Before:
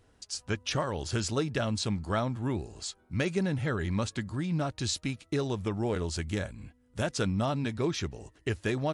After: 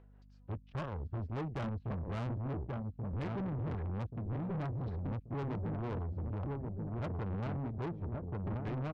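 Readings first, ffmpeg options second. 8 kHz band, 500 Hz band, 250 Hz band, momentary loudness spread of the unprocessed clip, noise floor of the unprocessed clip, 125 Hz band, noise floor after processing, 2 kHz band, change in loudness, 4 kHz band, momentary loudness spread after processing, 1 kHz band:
below −30 dB, −10.5 dB, −8.0 dB, 7 LU, −65 dBFS, −3.5 dB, −59 dBFS, −14.5 dB, −7.0 dB, below −20 dB, 3 LU, −7.5 dB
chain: -filter_complex "[0:a]afwtdn=0.0178,aemphasis=mode=reproduction:type=riaa,aeval=exprs='0.299*(cos(1*acos(clip(val(0)/0.299,-1,1)))-cos(1*PI/2))+0.0376*(cos(7*acos(clip(val(0)/0.299,-1,1)))-cos(7*PI/2))':channel_layout=same,tremolo=f=5:d=0.65,acrossover=split=390[link_01][link_02];[link_02]acompressor=mode=upward:threshold=-51dB:ratio=2.5[link_03];[link_01][link_03]amix=inputs=2:normalize=0,lowpass=2300,asplit=2[link_04][link_05];[link_05]adelay=1132,lowpass=frequency=1100:poles=1,volume=-9dB,asplit=2[link_06][link_07];[link_07]adelay=1132,lowpass=frequency=1100:poles=1,volume=0.35,asplit=2[link_08][link_09];[link_09]adelay=1132,lowpass=frequency=1100:poles=1,volume=0.35,asplit=2[link_10][link_11];[link_11]adelay=1132,lowpass=frequency=1100:poles=1,volume=0.35[link_12];[link_04][link_06][link_08][link_10][link_12]amix=inputs=5:normalize=0,aeval=exprs='val(0)+0.00112*(sin(2*PI*50*n/s)+sin(2*PI*2*50*n/s)/2+sin(2*PI*3*50*n/s)/3+sin(2*PI*4*50*n/s)/4+sin(2*PI*5*50*n/s)/5)':channel_layout=same,alimiter=limit=-21dB:level=0:latency=1:release=27,asoftclip=type=tanh:threshold=-35.5dB,volume=1dB"

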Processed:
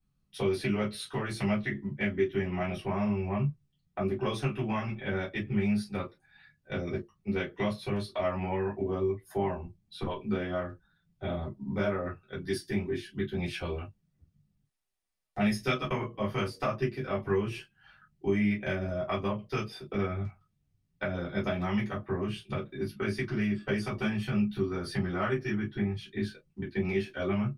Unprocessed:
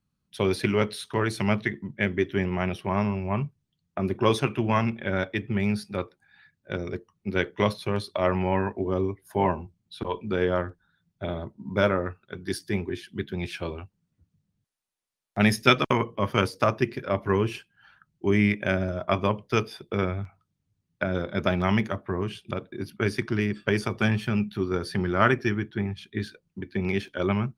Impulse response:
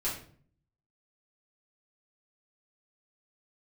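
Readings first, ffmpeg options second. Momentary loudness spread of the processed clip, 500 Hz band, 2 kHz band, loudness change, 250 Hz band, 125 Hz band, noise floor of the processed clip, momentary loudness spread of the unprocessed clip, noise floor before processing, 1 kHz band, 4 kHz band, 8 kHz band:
8 LU, −5.0 dB, −7.0 dB, −5.5 dB, −4.0 dB, −5.0 dB, −75 dBFS, 11 LU, −79 dBFS, −8.0 dB, −7.5 dB, −7.0 dB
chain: -filter_complex "[0:a]acompressor=threshold=-28dB:ratio=3[link_01];[1:a]atrim=start_sample=2205,afade=type=out:start_time=0.16:duration=0.01,atrim=end_sample=7497,asetrate=88200,aresample=44100[link_02];[link_01][link_02]afir=irnorm=-1:irlink=0"

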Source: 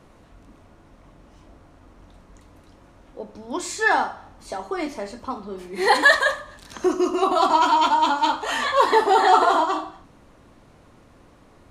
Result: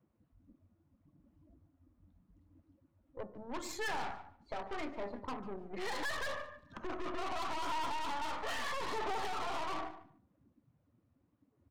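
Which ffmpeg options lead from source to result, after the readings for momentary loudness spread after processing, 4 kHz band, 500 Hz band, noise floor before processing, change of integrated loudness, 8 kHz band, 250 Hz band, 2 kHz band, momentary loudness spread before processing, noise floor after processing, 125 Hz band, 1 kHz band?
10 LU, −16.5 dB, −19.0 dB, −53 dBFS, −20.0 dB, −15.0 dB, −18.0 dB, −19.5 dB, 18 LU, −76 dBFS, can't be measured, −20.0 dB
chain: -filter_complex "[0:a]highpass=69,acrossover=split=800[link_01][link_02];[link_02]adynamicsmooth=sensitivity=4:basefreq=4300[link_03];[link_01][link_03]amix=inputs=2:normalize=0,afftdn=noise_reduction=23:noise_floor=-39,acrossover=split=390|3200[link_04][link_05][link_06];[link_04]acompressor=threshold=-36dB:ratio=4[link_07];[link_05]acompressor=threshold=-19dB:ratio=4[link_08];[link_06]acompressor=threshold=-33dB:ratio=4[link_09];[link_07][link_08][link_09]amix=inputs=3:normalize=0,alimiter=limit=-18dB:level=0:latency=1:release=48,aeval=exprs='(tanh(50.1*val(0)+0.75)-tanh(0.75))/50.1':channel_layout=same,bandreject=frequency=357.6:width_type=h:width=4,bandreject=frequency=715.2:width_type=h:width=4,bandreject=frequency=1072.8:width_type=h:width=4,bandreject=frequency=1430.4:width_type=h:width=4,bandreject=frequency=1788:width_type=h:width=4,aphaser=in_gain=1:out_gain=1:delay=1.7:decay=0.2:speed=0.77:type=sinusoidal,asplit=2[link_10][link_11];[link_11]adelay=146,lowpass=frequency=4400:poles=1,volume=-15dB,asplit=2[link_12][link_13];[link_13]adelay=146,lowpass=frequency=4400:poles=1,volume=0.15[link_14];[link_10][link_12][link_14]amix=inputs=3:normalize=0,volume=-3dB"

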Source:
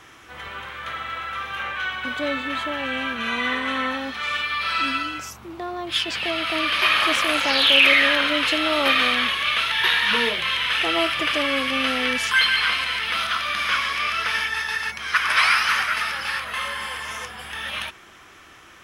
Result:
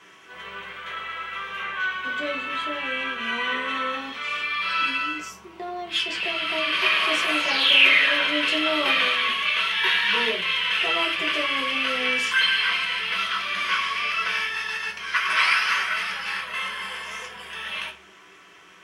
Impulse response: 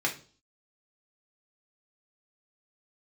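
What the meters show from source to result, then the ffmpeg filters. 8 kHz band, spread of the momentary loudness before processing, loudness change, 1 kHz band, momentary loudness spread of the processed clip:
−4.5 dB, 13 LU, −1.5 dB, −3.0 dB, 13 LU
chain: -filter_complex "[1:a]atrim=start_sample=2205,asetrate=57330,aresample=44100[link_01];[0:a][link_01]afir=irnorm=-1:irlink=0,volume=-8dB"

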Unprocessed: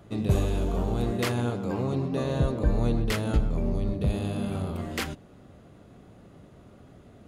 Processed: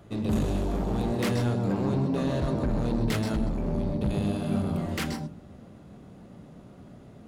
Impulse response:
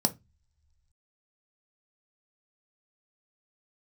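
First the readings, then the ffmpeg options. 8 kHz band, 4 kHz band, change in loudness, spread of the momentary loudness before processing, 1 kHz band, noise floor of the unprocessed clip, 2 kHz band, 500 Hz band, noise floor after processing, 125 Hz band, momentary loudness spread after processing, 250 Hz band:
−1.0 dB, −1.0 dB, 0.0 dB, 6 LU, +0.5 dB, −52 dBFS, −1.5 dB, −0.5 dB, −50 dBFS, −1.0 dB, 6 LU, +2.5 dB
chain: -filter_complex "[0:a]asoftclip=type=hard:threshold=-25.5dB,asplit=2[link_01][link_02];[1:a]atrim=start_sample=2205,adelay=128[link_03];[link_02][link_03]afir=irnorm=-1:irlink=0,volume=-14.5dB[link_04];[link_01][link_04]amix=inputs=2:normalize=0"

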